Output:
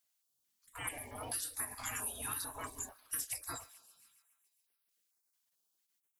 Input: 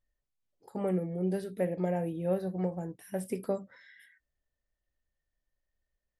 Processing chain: 1.07–3.22 s: graphic EQ 1/2/8 kHz +9/-11/+6 dB; gate -48 dBFS, range -10 dB; spectral gate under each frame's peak -30 dB weak; treble shelf 3.9 kHz +11.5 dB; thinning echo 139 ms, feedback 67%, high-pass 580 Hz, level -22.5 dB; compression 10:1, threshold -50 dBFS, peak gain reduction 10 dB; step-sequenced notch 4.5 Hz 380–7100 Hz; trim +15 dB

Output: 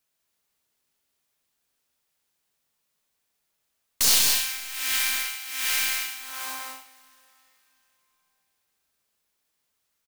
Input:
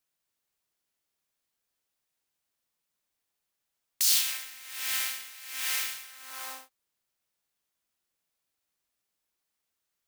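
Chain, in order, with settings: tracing distortion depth 0.025 ms; loudspeakers at several distances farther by 45 m -10 dB, 66 m -5 dB; two-slope reverb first 0.46 s, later 3.6 s, from -16 dB, DRR 9 dB; trim +4.5 dB

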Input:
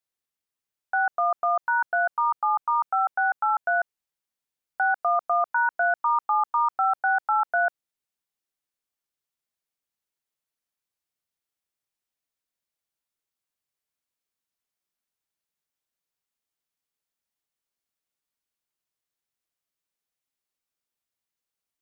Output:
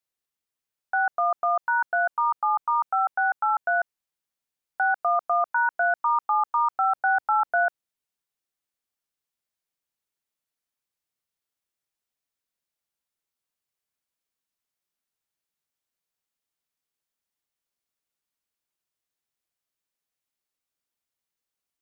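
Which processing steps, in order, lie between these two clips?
6.95–7.64 s: bass shelf 350 Hz +6 dB

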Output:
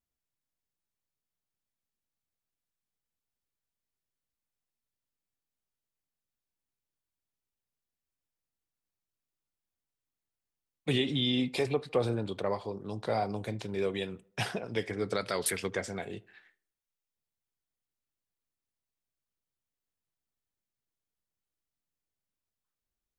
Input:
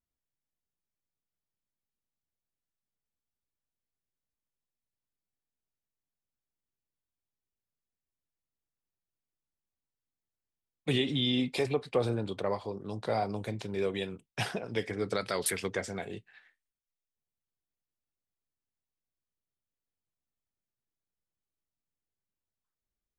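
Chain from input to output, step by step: tape echo 77 ms, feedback 47%, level -22.5 dB, low-pass 1.8 kHz

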